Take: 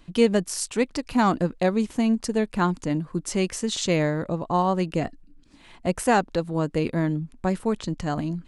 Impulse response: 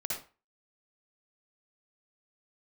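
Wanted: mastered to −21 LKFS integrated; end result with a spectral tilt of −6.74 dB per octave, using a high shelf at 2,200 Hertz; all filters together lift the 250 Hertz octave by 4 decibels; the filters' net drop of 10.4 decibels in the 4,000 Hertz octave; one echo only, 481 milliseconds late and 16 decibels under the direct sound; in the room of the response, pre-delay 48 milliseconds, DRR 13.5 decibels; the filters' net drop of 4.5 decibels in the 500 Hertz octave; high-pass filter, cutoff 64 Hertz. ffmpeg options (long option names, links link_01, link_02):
-filter_complex "[0:a]highpass=64,equalizer=frequency=250:width_type=o:gain=7,equalizer=frequency=500:width_type=o:gain=-7.5,highshelf=frequency=2200:gain=-5.5,equalizer=frequency=4000:width_type=o:gain=-8.5,aecho=1:1:481:0.158,asplit=2[link_01][link_02];[1:a]atrim=start_sample=2205,adelay=48[link_03];[link_02][link_03]afir=irnorm=-1:irlink=0,volume=-16.5dB[link_04];[link_01][link_04]amix=inputs=2:normalize=0,volume=2.5dB"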